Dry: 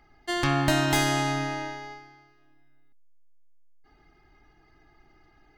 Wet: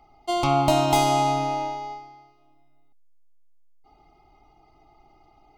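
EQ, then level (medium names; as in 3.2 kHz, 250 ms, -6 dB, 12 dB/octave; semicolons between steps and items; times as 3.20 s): Butterworth band-stop 1.7 kHz, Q 2.2; peaking EQ 760 Hz +10.5 dB 0.77 oct; 0.0 dB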